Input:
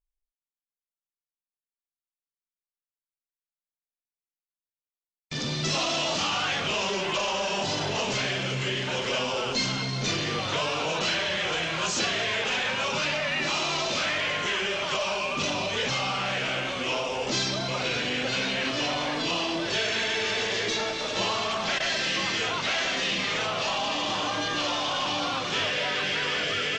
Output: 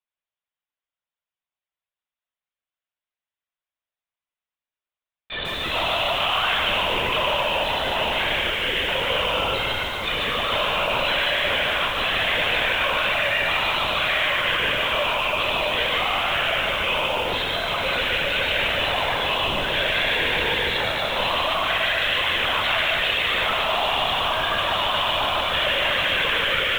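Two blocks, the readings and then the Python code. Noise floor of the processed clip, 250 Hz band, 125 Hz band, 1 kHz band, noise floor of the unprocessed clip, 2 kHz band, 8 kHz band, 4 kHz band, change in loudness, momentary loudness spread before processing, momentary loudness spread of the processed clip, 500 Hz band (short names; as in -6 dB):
under -85 dBFS, -2.5 dB, 0.0 dB, +6.5 dB, under -85 dBFS, +7.0 dB, -9.0 dB, +5.5 dB, +5.5 dB, 2 LU, 3 LU, +4.5 dB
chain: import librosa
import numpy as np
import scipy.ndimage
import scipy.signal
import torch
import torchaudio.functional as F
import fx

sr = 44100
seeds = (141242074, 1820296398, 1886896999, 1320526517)

p1 = scipy.signal.sosfilt(scipy.signal.butter(2, 480.0, 'highpass', fs=sr, output='sos'), x)
p2 = p1 + fx.echo_feedback(p1, sr, ms=106, feedback_pct=60, wet_db=-10, dry=0)
p3 = 10.0 ** (-25.0 / 20.0) * np.tanh(p2 / 10.0 ** (-25.0 / 20.0))
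p4 = fx.lpc_vocoder(p3, sr, seeds[0], excitation='whisper', order=16)
p5 = fx.echo_crushed(p4, sr, ms=148, feedback_pct=35, bits=8, wet_db=-4)
y = F.gain(torch.from_numpy(p5), 7.5).numpy()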